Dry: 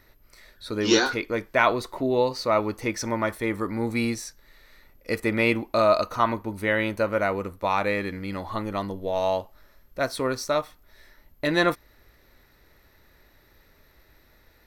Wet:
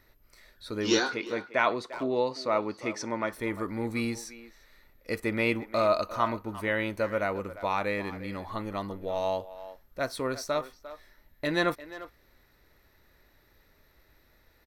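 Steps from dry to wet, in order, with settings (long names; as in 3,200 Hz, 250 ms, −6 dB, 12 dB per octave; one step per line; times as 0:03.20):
0:01.03–0:03.33: band-pass filter 150–7,200 Hz
far-end echo of a speakerphone 350 ms, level −14 dB
level −5 dB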